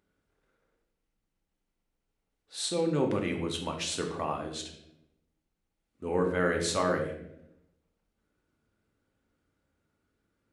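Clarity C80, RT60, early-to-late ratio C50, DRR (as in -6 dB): 10.0 dB, 0.80 s, 7.0 dB, 2.0 dB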